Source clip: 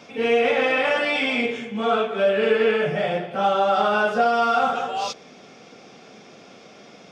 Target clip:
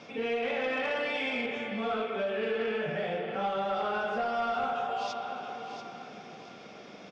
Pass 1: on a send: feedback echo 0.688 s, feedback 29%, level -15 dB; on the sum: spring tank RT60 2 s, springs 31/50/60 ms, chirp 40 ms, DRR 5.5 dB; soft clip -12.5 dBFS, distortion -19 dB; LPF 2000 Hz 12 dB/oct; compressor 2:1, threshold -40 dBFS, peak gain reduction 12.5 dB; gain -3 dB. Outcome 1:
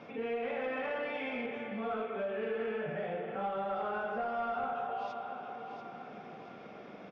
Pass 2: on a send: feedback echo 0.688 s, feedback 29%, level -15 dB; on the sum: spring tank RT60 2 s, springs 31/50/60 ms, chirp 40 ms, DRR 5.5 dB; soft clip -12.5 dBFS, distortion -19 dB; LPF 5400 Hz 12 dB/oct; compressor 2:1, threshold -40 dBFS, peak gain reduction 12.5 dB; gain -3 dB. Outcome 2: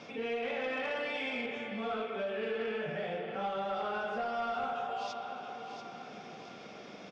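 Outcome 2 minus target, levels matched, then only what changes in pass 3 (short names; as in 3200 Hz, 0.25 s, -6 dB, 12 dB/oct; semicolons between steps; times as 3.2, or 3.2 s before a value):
compressor: peak gain reduction +4 dB
change: compressor 2:1, threshold -31.5 dBFS, peak gain reduction 8 dB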